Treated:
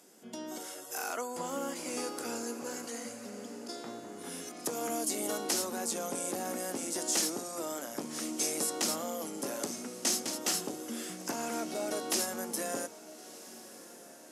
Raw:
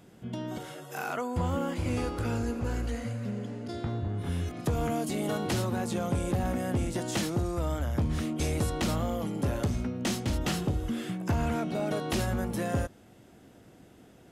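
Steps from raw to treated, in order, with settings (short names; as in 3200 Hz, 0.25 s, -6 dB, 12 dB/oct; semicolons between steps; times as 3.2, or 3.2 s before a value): HPF 250 Hz 24 dB/oct; band shelf 7900 Hz +12.5 dB; notches 50/100/150/200/250/300/350 Hz; on a send: diffused feedback echo 1.312 s, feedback 47%, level -16 dB; on the sum: gain -3.5 dB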